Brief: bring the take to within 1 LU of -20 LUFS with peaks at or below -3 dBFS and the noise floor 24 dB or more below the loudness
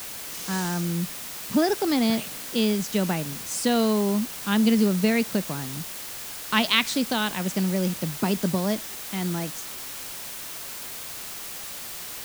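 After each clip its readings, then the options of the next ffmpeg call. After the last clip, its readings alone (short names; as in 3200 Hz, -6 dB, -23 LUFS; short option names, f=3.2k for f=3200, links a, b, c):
noise floor -37 dBFS; noise floor target -50 dBFS; loudness -26.0 LUFS; peak -4.5 dBFS; loudness target -20.0 LUFS
-> -af "afftdn=nr=13:nf=-37"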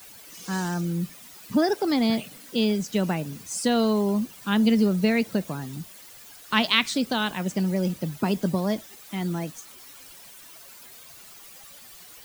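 noise floor -47 dBFS; noise floor target -50 dBFS
-> -af "afftdn=nr=6:nf=-47"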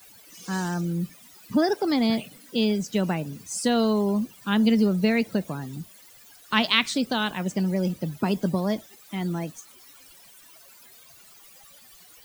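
noise floor -52 dBFS; loudness -25.5 LUFS; peak -5.0 dBFS; loudness target -20.0 LUFS
-> -af "volume=5.5dB,alimiter=limit=-3dB:level=0:latency=1"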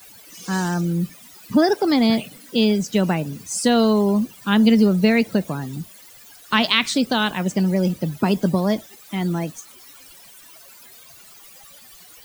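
loudness -20.0 LUFS; peak -3.0 dBFS; noise floor -46 dBFS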